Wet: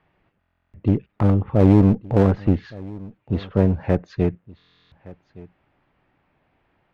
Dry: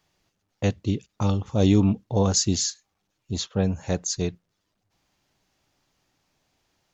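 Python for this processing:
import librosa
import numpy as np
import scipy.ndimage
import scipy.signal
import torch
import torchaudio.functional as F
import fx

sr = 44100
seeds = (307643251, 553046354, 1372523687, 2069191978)

p1 = scipy.signal.sosfilt(scipy.signal.butter(4, 2400.0, 'lowpass', fs=sr, output='sos'), x)
p2 = fx.env_lowpass_down(p1, sr, base_hz=1900.0, full_db=-21.5)
p3 = fx.clip_asym(p2, sr, top_db=-28.0, bottom_db=-10.5)
p4 = fx.dynamic_eq(p3, sr, hz=1100.0, q=1.3, threshold_db=-43.0, ratio=4.0, max_db=-4)
p5 = p4 + fx.echo_single(p4, sr, ms=1167, db=-21.0, dry=0)
p6 = fx.buffer_glitch(p5, sr, at_s=(0.39, 4.57), block=1024, repeats=14)
y = F.gain(torch.from_numpy(p6), 7.5).numpy()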